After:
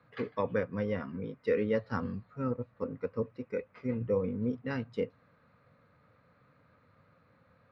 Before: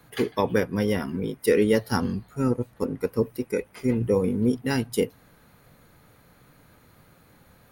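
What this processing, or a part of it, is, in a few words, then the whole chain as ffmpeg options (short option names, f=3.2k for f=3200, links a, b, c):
guitar cabinet: -af "highpass=91,equalizer=f=95:t=q:w=4:g=5,equalizer=f=360:t=q:w=4:g=-9,equalizer=f=530:t=q:w=4:g=6,equalizer=f=810:t=q:w=4:g=-5,equalizer=f=1.2k:t=q:w=4:g=6,equalizer=f=3.2k:t=q:w=4:g=-9,lowpass=f=3.7k:w=0.5412,lowpass=f=3.7k:w=1.3066,volume=-9dB"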